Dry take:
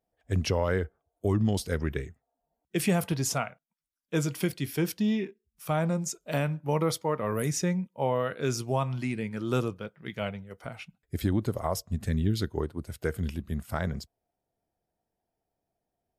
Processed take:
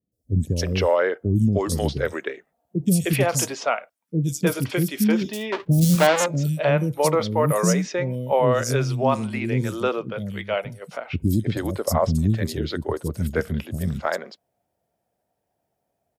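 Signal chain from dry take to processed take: 5.21–5.95 s: square wave that keeps the level; high-pass 80 Hz; peaking EQ 570 Hz +5.5 dB 0.26 oct; three bands offset in time lows, highs, mids 120/310 ms, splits 330/4500 Hz; trim +8 dB

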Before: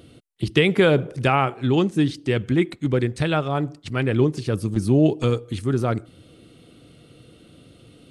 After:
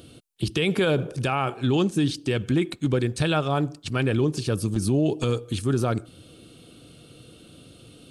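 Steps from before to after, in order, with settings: treble shelf 3.3 kHz +7 dB; band-stop 2 kHz, Q 6.2; peak limiter -13.5 dBFS, peak gain reduction 10 dB

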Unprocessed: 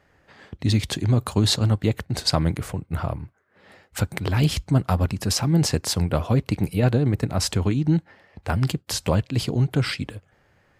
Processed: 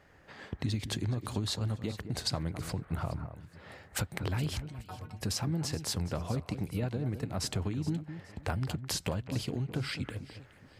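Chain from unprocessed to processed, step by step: compression 6:1, threshold -31 dBFS, peak gain reduction 16.5 dB; 4.62–5.23 s: inharmonic resonator 110 Hz, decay 0.23 s, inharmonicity 0.008; on a send: echo whose repeats swap between lows and highs 210 ms, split 1.9 kHz, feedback 53%, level -10 dB

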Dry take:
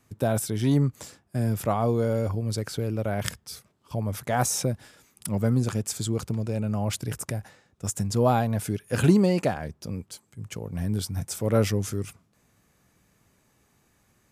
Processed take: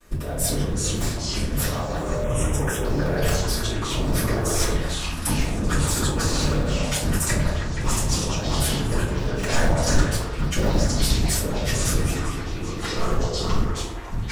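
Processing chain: cycle switcher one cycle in 3, inverted; gate with hold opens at -56 dBFS; compressor with a negative ratio -33 dBFS, ratio -1; repeats whose band climbs or falls 159 ms, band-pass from 740 Hz, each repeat 0.7 oct, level -0.5 dB; simulated room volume 49 m³, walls mixed, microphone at 2.6 m; ever faster or slower copies 251 ms, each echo -5 st, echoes 2; 2.24–2.85 s: Butterworth band-stop 4.4 kHz, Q 1.6; trim -7 dB

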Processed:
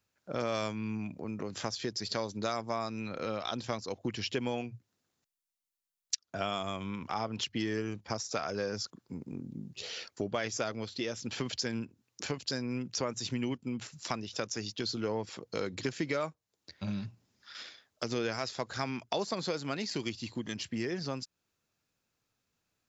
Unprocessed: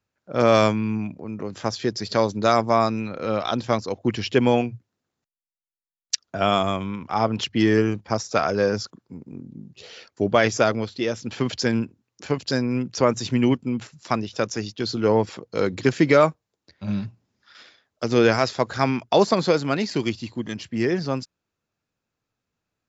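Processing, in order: treble shelf 2.7 kHz +8 dB; compression 3:1, threshold -33 dBFS, peak gain reduction 17 dB; trim -2 dB

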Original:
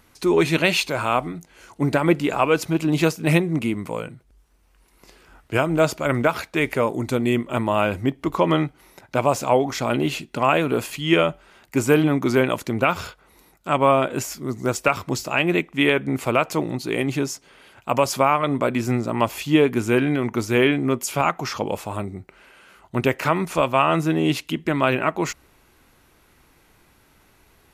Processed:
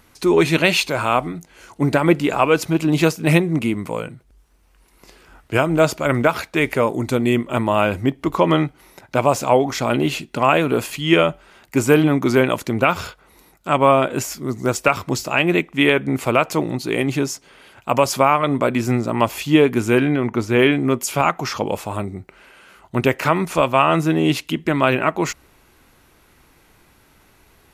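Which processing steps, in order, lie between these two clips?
20.07–20.59 s: treble shelf 4.8 kHz -10 dB; trim +3 dB

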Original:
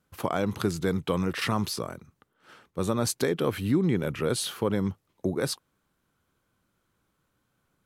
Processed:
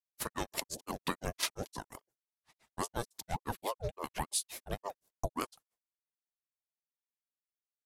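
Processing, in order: expander -46 dBFS; tone controls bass -2 dB, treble +14 dB; comb 2.9 ms, depth 49%; compression 6:1, threshold -25 dBFS, peak gain reduction 12.5 dB; granulator 125 ms, grains 5.8 per s, spray 29 ms, pitch spread up and down by 0 st; ring modulator with a swept carrier 520 Hz, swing 55%, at 3.5 Hz

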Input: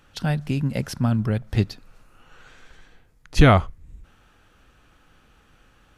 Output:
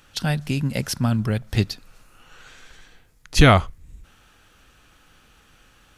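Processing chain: treble shelf 2.4 kHz +9 dB

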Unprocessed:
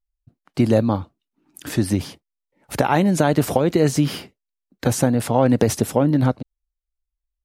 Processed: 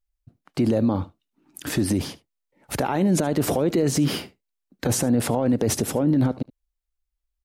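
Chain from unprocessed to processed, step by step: dynamic bell 340 Hz, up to +6 dB, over -28 dBFS, Q 0.79; peak limiter -14.5 dBFS, peak gain reduction 14 dB; on a send: delay 74 ms -21 dB; on the sum: trim +1.5 dB

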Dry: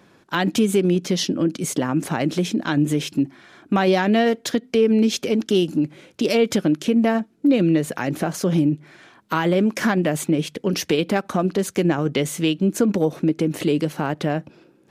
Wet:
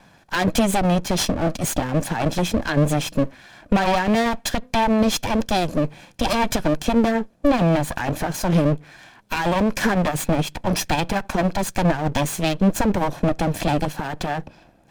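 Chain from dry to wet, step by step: comb filter that takes the minimum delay 1.2 ms; trim +3.5 dB

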